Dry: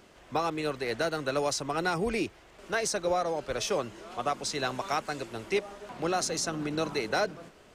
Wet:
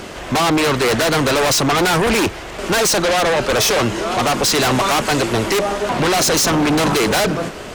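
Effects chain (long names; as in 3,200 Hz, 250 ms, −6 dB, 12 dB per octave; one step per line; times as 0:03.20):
sine wavefolder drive 5 dB, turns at −17.5 dBFS
harmonic generator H 5 −8 dB, 8 −21 dB, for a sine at −16.5 dBFS
level +6.5 dB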